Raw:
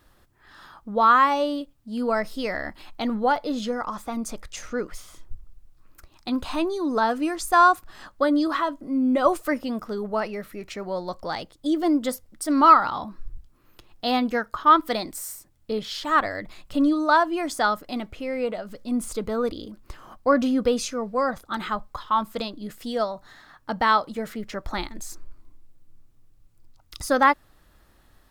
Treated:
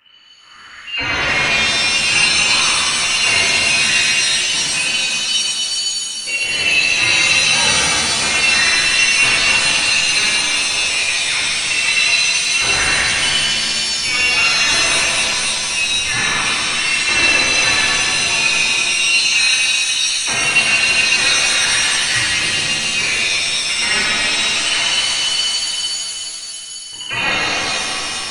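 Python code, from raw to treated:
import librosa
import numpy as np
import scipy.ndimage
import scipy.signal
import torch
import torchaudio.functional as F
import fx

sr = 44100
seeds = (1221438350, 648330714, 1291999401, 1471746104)

y = fx.fold_sine(x, sr, drive_db=16, ceiling_db=-4.0)
y = fx.freq_invert(y, sr, carrier_hz=3000)
y = fx.rev_shimmer(y, sr, seeds[0], rt60_s=3.5, semitones=7, shimmer_db=-2, drr_db=-9.0)
y = y * 10.0 ** (-17.0 / 20.0)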